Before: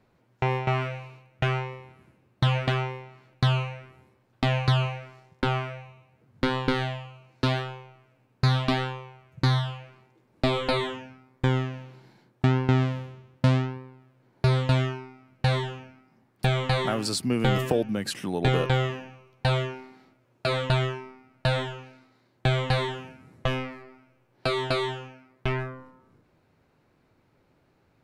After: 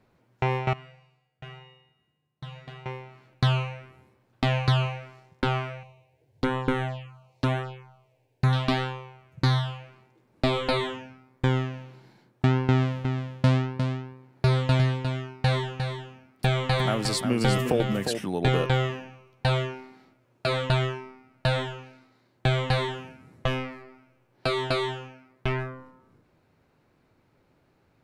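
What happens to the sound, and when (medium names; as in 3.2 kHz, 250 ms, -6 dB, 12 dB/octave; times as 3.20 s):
0.73–2.86 s: feedback comb 150 Hz, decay 1.1 s, harmonics odd, mix 90%
5.83–8.53 s: touch-sensitive phaser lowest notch 200 Hz, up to 4.7 kHz, full sweep at -23 dBFS
12.69–18.26 s: delay 355 ms -7 dB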